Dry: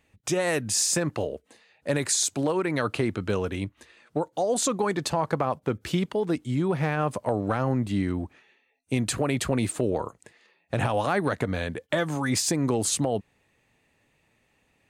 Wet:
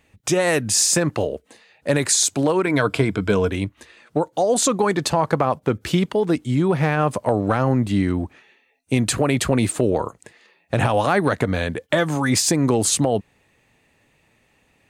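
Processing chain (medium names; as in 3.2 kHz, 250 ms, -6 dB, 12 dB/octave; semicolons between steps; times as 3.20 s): 2.65–3.50 s: rippled EQ curve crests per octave 1.7, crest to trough 8 dB; trim +6.5 dB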